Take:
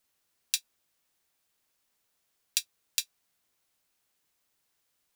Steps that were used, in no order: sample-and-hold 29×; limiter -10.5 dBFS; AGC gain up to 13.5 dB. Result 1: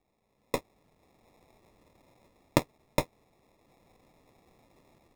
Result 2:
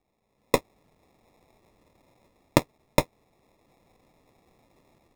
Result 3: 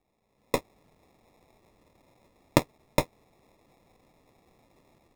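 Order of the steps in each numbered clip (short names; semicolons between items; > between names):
limiter > AGC > sample-and-hold; sample-and-hold > limiter > AGC; limiter > sample-and-hold > AGC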